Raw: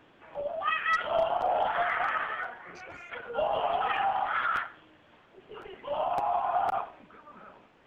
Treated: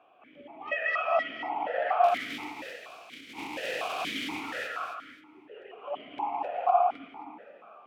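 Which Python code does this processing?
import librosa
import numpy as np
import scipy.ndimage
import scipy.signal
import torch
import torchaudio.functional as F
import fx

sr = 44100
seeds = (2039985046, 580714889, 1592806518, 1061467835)

y = fx.spec_flatten(x, sr, power=0.11, at=(2.03, 4.4), fade=0.02)
y = 10.0 ** (-20.0 / 20.0) * np.tanh(y / 10.0 ** (-20.0 / 20.0))
y = fx.echo_feedback(y, sr, ms=263, feedback_pct=22, wet_db=-4)
y = fx.rev_gated(y, sr, seeds[0], gate_ms=300, shape='rising', drr_db=3.0)
y = fx.vowel_held(y, sr, hz=4.2)
y = y * librosa.db_to_amplitude(8.5)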